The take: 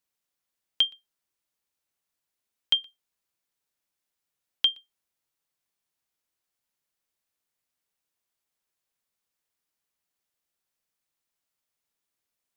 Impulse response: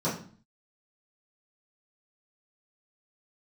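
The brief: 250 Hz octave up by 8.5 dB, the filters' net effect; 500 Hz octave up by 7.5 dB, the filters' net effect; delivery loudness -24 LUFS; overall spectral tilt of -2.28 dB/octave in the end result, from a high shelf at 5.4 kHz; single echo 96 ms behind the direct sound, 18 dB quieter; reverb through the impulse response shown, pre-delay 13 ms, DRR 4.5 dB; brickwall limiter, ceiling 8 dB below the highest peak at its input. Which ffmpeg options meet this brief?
-filter_complex "[0:a]equalizer=f=250:t=o:g=8.5,equalizer=f=500:t=o:g=7,highshelf=f=5400:g=5.5,alimiter=limit=0.141:level=0:latency=1,aecho=1:1:96:0.126,asplit=2[s0][s1];[1:a]atrim=start_sample=2205,adelay=13[s2];[s1][s2]afir=irnorm=-1:irlink=0,volume=0.188[s3];[s0][s3]amix=inputs=2:normalize=0,volume=2.51"

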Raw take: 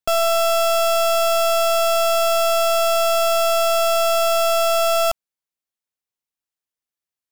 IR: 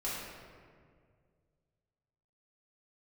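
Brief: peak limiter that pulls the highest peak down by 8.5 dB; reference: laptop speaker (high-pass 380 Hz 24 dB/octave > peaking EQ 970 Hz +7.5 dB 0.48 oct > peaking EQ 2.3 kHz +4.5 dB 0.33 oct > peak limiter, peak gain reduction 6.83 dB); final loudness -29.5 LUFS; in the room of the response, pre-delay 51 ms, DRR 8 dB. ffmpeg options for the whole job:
-filter_complex "[0:a]alimiter=level_in=1.26:limit=0.0631:level=0:latency=1,volume=0.794,asplit=2[s0][s1];[1:a]atrim=start_sample=2205,adelay=51[s2];[s1][s2]afir=irnorm=-1:irlink=0,volume=0.237[s3];[s0][s3]amix=inputs=2:normalize=0,highpass=f=380:w=0.5412,highpass=f=380:w=1.3066,equalizer=f=970:t=o:w=0.48:g=7.5,equalizer=f=2300:t=o:w=0.33:g=4.5,volume=1.12,alimiter=limit=0.075:level=0:latency=1"

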